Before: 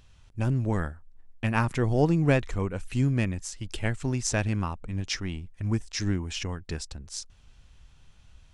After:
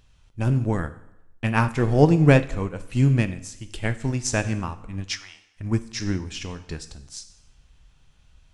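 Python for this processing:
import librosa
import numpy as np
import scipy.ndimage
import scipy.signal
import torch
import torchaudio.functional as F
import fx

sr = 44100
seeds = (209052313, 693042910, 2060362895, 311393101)

y = fx.highpass(x, sr, hz=680.0, slope=24, at=(5.06, 5.57))
y = fx.rev_plate(y, sr, seeds[0], rt60_s=0.83, hf_ratio=0.95, predelay_ms=0, drr_db=9.0)
y = fx.upward_expand(y, sr, threshold_db=-35.0, expansion=1.5)
y = F.gain(torch.from_numpy(y), 7.0).numpy()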